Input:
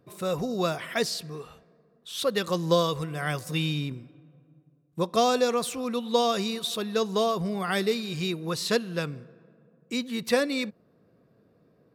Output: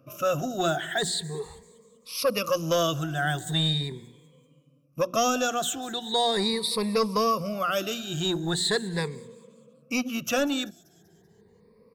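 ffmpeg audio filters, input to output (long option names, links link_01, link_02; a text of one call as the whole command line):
ffmpeg -i in.wav -filter_complex "[0:a]afftfilt=real='re*pow(10,20/40*sin(2*PI*(0.9*log(max(b,1)*sr/1024/100)/log(2)-(0.4)*(pts-256)/sr)))':imag='im*pow(10,20/40*sin(2*PI*(0.9*log(max(b,1)*sr/1024/100)/log(2)-(0.4)*(pts-256)/sr)))':win_size=1024:overlap=0.75,bandreject=frequency=60:width_type=h:width=6,bandreject=frequency=120:width_type=h:width=6,bandreject=frequency=180:width_type=h:width=6,bandreject=frequency=240:width_type=h:width=6,bandreject=frequency=300:width_type=h:width=6,bandreject=frequency=360:width_type=h:width=6,acrossover=split=630|5600[link_01][link_02][link_03];[link_01]asoftclip=type=tanh:threshold=-24dB[link_04];[link_02]alimiter=limit=-19dB:level=0:latency=1:release=132[link_05];[link_03]asplit=6[link_06][link_07][link_08][link_09][link_10][link_11];[link_07]adelay=193,afreqshift=-140,volume=-15dB[link_12];[link_08]adelay=386,afreqshift=-280,volume=-20.8dB[link_13];[link_09]adelay=579,afreqshift=-420,volume=-26.7dB[link_14];[link_10]adelay=772,afreqshift=-560,volume=-32.5dB[link_15];[link_11]adelay=965,afreqshift=-700,volume=-38.4dB[link_16];[link_06][link_12][link_13][link_14][link_15][link_16]amix=inputs=6:normalize=0[link_17];[link_04][link_05][link_17]amix=inputs=3:normalize=0" out.wav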